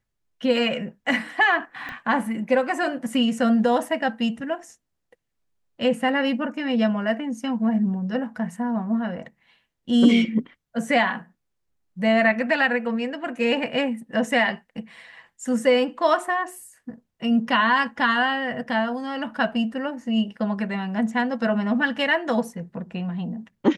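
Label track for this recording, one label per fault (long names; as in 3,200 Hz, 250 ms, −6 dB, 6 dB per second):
1.890000	1.890000	click −21 dBFS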